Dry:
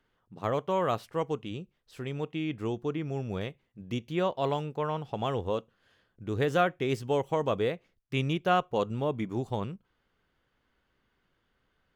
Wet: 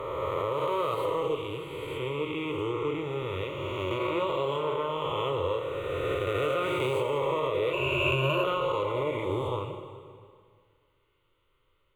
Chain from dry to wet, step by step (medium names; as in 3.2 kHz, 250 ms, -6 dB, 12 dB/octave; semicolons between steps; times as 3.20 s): reverse spectral sustain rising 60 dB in 2.90 s; static phaser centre 1.1 kHz, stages 8; plate-style reverb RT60 2 s, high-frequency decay 0.9×, DRR 4.5 dB; peak limiter -19.5 dBFS, peak gain reduction 7 dB; 7.73–8.44 s: rippled EQ curve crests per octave 1.4, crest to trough 16 dB